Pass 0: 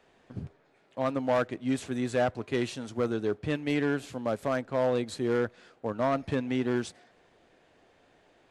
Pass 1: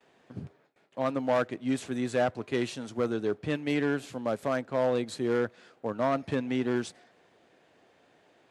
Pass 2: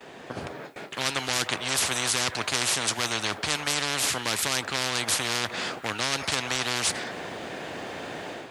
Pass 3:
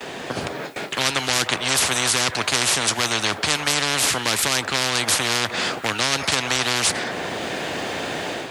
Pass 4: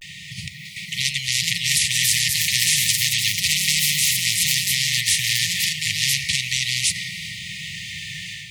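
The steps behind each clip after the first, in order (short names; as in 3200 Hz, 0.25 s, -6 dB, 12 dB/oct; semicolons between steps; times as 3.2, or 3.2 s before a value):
HPF 110 Hz 12 dB/oct; gate with hold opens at -55 dBFS
AGC gain up to 9.5 dB; spectral compressor 10:1
three-band squash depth 40%; gain +6 dB
echoes that change speed 0.645 s, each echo +4 st, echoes 3; brick-wall FIR band-stop 190–1800 Hz; vibrato 0.32 Hz 39 cents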